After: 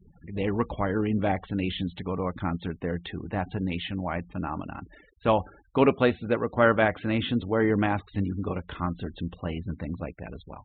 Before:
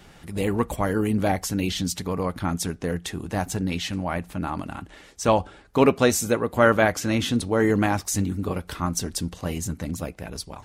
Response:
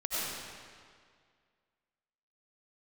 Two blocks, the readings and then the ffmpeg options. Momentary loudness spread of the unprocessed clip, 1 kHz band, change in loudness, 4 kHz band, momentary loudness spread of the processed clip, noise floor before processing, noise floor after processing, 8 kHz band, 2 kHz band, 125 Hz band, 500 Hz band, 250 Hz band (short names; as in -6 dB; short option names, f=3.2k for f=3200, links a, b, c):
11 LU, -3.0 dB, -3.5 dB, -6.0 dB, 12 LU, -50 dBFS, -57 dBFS, under -40 dB, -3.0 dB, -3.0 dB, -3.0 dB, -3.0 dB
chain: -af "afftfilt=real='re*gte(hypot(re,im),0.01)':imag='im*gte(hypot(re,im),0.01)':win_size=1024:overlap=0.75,aresample=8000,aresample=44100,volume=-3dB"